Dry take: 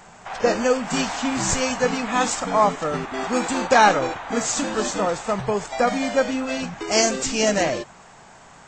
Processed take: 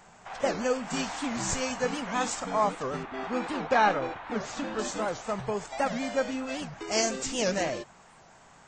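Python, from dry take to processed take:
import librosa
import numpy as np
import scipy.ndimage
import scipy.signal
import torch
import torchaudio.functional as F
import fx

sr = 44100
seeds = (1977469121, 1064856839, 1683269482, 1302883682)

y = fx.lowpass(x, sr, hz=3600.0, slope=12, at=(3.03, 4.79))
y = fx.record_warp(y, sr, rpm=78.0, depth_cents=250.0)
y = F.gain(torch.from_numpy(y), -8.0).numpy()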